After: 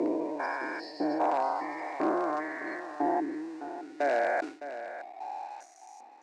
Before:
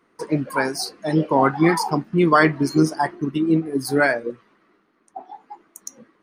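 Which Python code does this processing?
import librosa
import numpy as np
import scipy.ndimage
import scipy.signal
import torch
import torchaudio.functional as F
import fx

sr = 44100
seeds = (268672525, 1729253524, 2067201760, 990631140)

p1 = fx.spec_steps(x, sr, hold_ms=400)
p2 = fx.high_shelf(p1, sr, hz=2700.0, db=-7.5)
p3 = fx.over_compress(p2, sr, threshold_db=-32.0, ratio=-0.5)
p4 = p2 + F.gain(torch.from_numpy(p3), -1.0).numpy()
p5 = fx.spec_gate(p4, sr, threshold_db=-30, keep='strong')
p6 = np.sign(p5) * np.maximum(np.abs(p5) - 10.0 ** (-47.0 / 20.0), 0.0)
p7 = fx.filter_lfo_highpass(p6, sr, shape='saw_up', hz=1.0, low_hz=350.0, high_hz=2600.0, q=1.0)
p8 = 10.0 ** (-18.0 / 20.0) * (np.abs((p7 / 10.0 ** (-18.0 / 20.0) + 3.0) % 4.0 - 2.0) - 1.0)
p9 = fx.cabinet(p8, sr, low_hz=150.0, low_slope=24, high_hz=8900.0, hz=(180.0, 310.0, 450.0, 720.0, 1300.0, 3200.0), db=(-9, 5, -4, 7, -7, -8))
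p10 = p9 + fx.echo_feedback(p9, sr, ms=611, feedback_pct=15, wet_db=-12.0, dry=0)
p11 = fx.sustainer(p10, sr, db_per_s=140.0)
y = F.gain(torch.from_numpy(p11), -3.0).numpy()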